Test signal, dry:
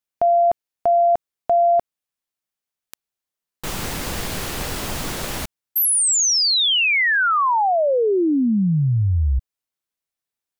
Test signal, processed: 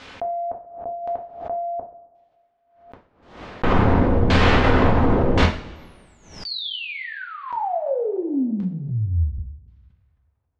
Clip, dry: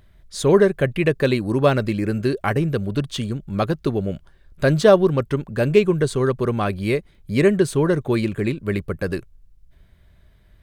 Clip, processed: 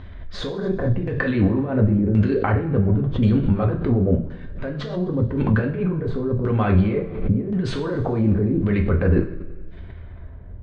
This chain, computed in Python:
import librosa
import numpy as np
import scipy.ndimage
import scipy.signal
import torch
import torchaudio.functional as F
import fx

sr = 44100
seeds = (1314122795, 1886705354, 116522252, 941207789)

y = fx.high_shelf(x, sr, hz=9000.0, db=-9.5)
y = fx.over_compress(y, sr, threshold_db=-28.0, ratio=-1.0)
y = fx.filter_lfo_lowpass(y, sr, shape='saw_down', hz=0.93, low_hz=450.0, high_hz=4200.0, q=0.7)
y = fx.air_absorb(y, sr, metres=71.0)
y = fx.rev_double_slope(y, sr, seeds[0], early_s=0.39, late_s=1.8, knee_db=-18, drr_db=0.5)
y = fx.pre_swell(y, sr, db_per_s=88.0)
y = y * 10.0 ** (5.0 / 20.0)